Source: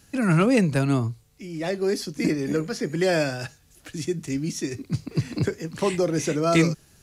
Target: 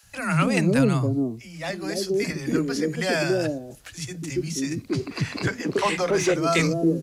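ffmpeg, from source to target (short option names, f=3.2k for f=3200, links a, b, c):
-filter_complex "[0:a]acrossover=split=180|560[a][b][c];[a]adelay=30[d];[b]adelay=280[e];[d][e][c]amix=inputs=3:normalize=0,asettb=1/sr,asplit=3[f][g][h];[f]atrim=end=4.884[i];[g]atrim=start=4.88:end=6.34,asetpts=PTS-STARTPTS,afade=t=in:d=0.004:c=qsin,afade=t=out:st=1.456:d=0.004:c=qsin,asplit=2[j][k];[k]highpass=f=720:p=1,volume=15dB,asoftclip=type=tanh:threshold=-12.5dB[l];[j][l]amix=inputs=2:normalize=0,lowpass=f=2.6k:p=1,volume=-6dB[m];[h]atrim=start=6.336[n];[i][m]acrossfade=d=0.004:c1=hsin:c2=qsin[o];[o][n]acrossfade=d=0.004:c1=qsin:c2=hsin,volume=2dB"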